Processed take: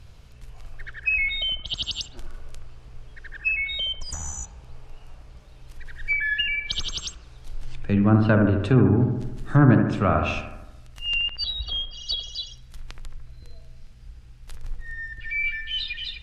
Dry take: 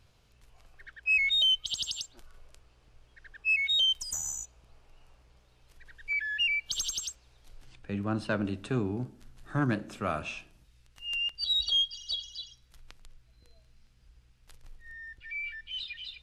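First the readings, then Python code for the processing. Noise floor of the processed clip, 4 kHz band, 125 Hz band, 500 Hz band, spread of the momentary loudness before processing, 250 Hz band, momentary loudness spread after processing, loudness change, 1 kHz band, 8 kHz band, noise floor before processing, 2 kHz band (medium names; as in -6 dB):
-47 dBFS, +0.5 dB, +15.5 dB, +11.5 dB, 19 LU, +13.0 dB, 19 LU, +5.5 dB, +10.0 dB, -1.5 dB, -64 dBFS, +5.0 dB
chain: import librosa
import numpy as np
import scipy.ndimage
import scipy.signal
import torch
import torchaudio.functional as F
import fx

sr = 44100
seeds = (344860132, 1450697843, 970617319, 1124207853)

y = fx.env_lowpass_down(x, sr, base_hz=1700.0, full_db=-26.5)
y = fx.low_shelf(y, sr, hz=140.0, db=9.5)
y = fx.echo_bbd(y, sr, ms=74, stages=1024, feedback_pct=60, wet_db=-6)
y = F.gain(torch.from_numpy(y), 9.0).numpy()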